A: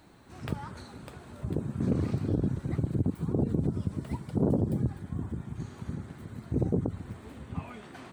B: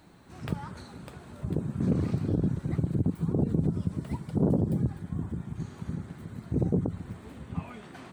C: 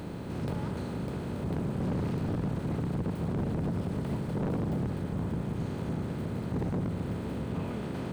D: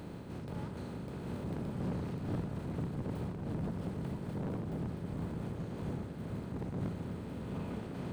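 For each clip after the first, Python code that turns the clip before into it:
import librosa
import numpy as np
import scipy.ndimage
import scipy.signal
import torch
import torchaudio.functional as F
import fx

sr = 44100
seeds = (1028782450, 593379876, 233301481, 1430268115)

y1 = fx.peak_eq(x, sr, hz=170.0, db=5.0, octaves=0.35)
y2 = fx.bin_compress(y1, sr, power=0.4)
y2 = np.clip(y2, -10.0 ** (-22.5 / 20.0), 10.0 ** (-22.5 / 20.0))
y2 = y2 * 10.0 ** (-5.0 / 20.0)
y3 = y2 + 10.0 ** (-6.5 / 20.0) * np.pad(y2, (int(1172 * sr / 1000.0), 0))[:len(y2)]
y3 = fx.am_noise(y3, sr, seeds[0], hz=5.7, depth_pct=60)
y3 = y3 * 10.0 ** (-4.0 / 20.0)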